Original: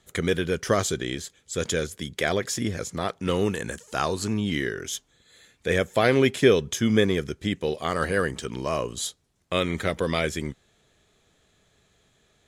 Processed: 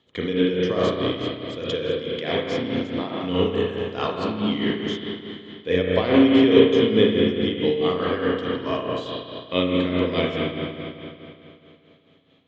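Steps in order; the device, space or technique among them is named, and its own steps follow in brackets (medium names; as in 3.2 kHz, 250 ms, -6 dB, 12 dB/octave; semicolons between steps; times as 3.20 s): combo amplifier with spring reverb and tremolo (spring tank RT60 2.9 s, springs 33/55 ms, chirp 25 ms, DRR -4 dB; tremolo 4.7 Hz, depth 60%; cabinet simulation 92–4400 Hz, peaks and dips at 270 Hz +9 dB, 470 Hz +5 dB, 1 kHz +4 dB, 1.5 kHz -6 dB, 3.1 kHz +9 dB); trim -3 dB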